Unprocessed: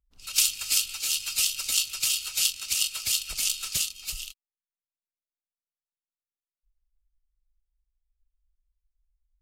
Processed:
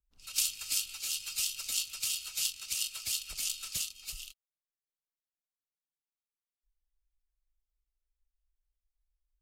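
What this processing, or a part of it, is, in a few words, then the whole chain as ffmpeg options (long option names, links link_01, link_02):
one-band saturation: -filter_complex "[0:a]acrossover=split=360|3200[link_01][link_02][link_03];[link_02]asoftclip=type=tanh:threshold=-31.5dB[link_04];[link_01][link_04][link_03]amix=inputs=3:normalize=0,volume=-7.5dB"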